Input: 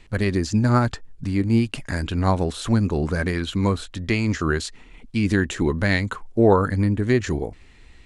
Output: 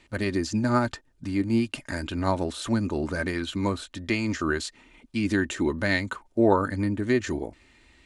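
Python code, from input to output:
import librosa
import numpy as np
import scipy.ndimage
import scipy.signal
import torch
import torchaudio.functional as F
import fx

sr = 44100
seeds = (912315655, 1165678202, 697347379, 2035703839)

y = fx.highpass(x, sr, hz=140.0, slope=6)
y = y + 0.4 * np.pad(y, (int(3.3 * sr / 1000.0), 0))[:len(y)]
y = y * librosa.db_to_amplitude(-3.5)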